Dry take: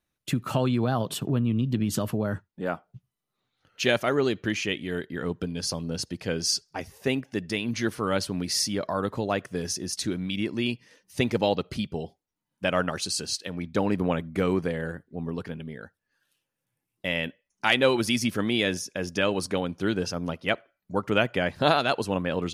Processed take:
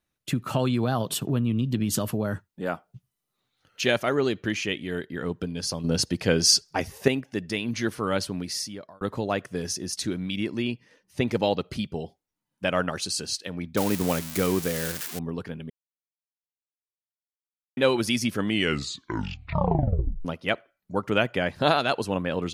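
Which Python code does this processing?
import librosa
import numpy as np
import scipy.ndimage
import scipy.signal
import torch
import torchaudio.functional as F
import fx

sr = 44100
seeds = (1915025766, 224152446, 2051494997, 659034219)

y = fx.high_shelf(x, sr, hz=4300.0, db=6.5, at=(0.59, 3.81))
y = fx.high_shelf(y, sr, hz=3500.0, db=-9.0, at=(10.62, 11.28))
y = fx.crossing_spikes(y, sr, level_db=-18.5, at=(13.77, 15.19))
y = fx.edit(y, sr, fx.clip_gain(start_s=5.84, length_s=1.24, db=7.0),
    fx.fade_out_span(start_s=8.24, length_s=0.77),
    fx.silence(start_s=15.7, length_s=2.07),
    fx.tape_stop(start_s=18.37, length_s=1.88), tone=tone)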